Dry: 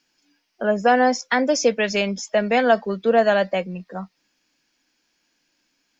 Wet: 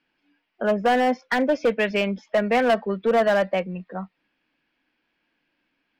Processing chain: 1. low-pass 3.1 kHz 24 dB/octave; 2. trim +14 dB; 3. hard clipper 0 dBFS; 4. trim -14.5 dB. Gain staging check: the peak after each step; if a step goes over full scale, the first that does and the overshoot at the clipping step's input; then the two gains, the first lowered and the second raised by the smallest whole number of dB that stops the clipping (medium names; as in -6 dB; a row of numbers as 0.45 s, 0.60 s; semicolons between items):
-5.5 dBFS, +8.5 dBFS, 0.0 dBFS, -14.5 dBFS; step 2, 8.5 dB; step 2 +5 dB, step 4 -5.5 dB